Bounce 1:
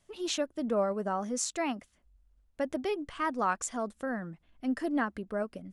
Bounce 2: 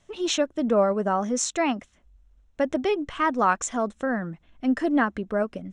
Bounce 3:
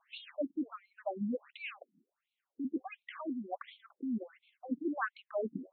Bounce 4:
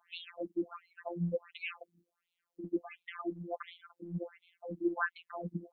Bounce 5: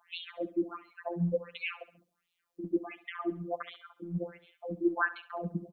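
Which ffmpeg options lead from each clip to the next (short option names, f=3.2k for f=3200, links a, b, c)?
-af "lowpass=f=7.7k:w=0.5412,lowpass=f=7.7k:w=1.3066,bandreject=f=4.7k:w=5.5,volume=8dB"
-af "areverse,acompressor=threshold=-29dB:ratio=8,areverse,afftfilt=real='re*between(b*sr/1024,230*pow(3100/230,0.5+0.5*sin(2*PI*1.4*pts/sr))/1.41,230*pow(3100/230,0.5+0.5*sin(2*PI*1.4*pts/sr))*1.41)':imag='im*between(b*sr/1024,230*pow(3100/230,0.5+0.5*sin(2*PI*1.4*pts/sr))/1.41,230*pow(3100/230,0.5+0.5*sin(2*PI*1.4*pts/sr))*1.41)':win_size=1024:overlap=0.75,volume=1.5dB"
-af "afftfilt=real='hypot(re,im)*cos(PI*b)':imag='0':win_size=1024:overlap=0.75,volume=5.5dB"
-af "aecho=1:1:68|136|204|272:0.15|0.0643|0.0277|0.0119,volume=4dB"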